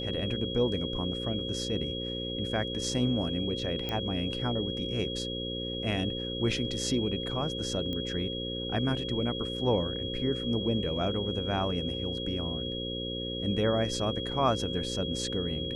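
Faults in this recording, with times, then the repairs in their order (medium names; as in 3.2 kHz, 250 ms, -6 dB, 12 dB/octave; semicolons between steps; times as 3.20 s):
buzz 60 Hz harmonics 9 -37 dBFS
whine 3.3 kHz -36 dBFS
3.89 s: pop -19 dBFS
7.93 s: pop -23 dBFS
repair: de-click; de-hum 60 Hz, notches 9; band-stop 3.3 kHz, Q 30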